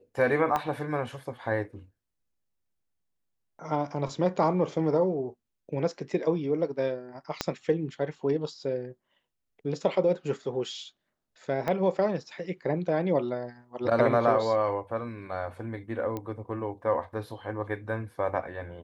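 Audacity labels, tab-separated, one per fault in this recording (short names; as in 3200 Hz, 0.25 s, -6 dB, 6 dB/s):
0.560000	0.560000	pop -15 dBFS
7.410000	7.410000	pop -11 dBFS
11.680000	11.680000	pop -17 dBFS
16.170000	16.170000	pop -21 dBFS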